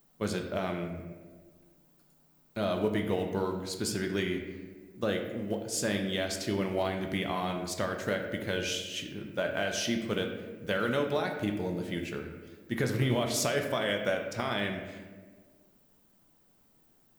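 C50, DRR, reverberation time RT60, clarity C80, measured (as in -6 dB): 6.0 dB, 3.0 dB, 1.5 s, 8.0 dB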